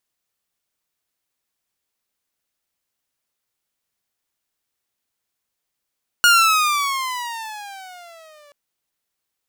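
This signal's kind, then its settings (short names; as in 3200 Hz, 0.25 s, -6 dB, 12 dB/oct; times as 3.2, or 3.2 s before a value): gliding synth tone saw, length 2.28 s, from 1440 Hz, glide -16 st, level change -37.5 dB, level -6.5 dB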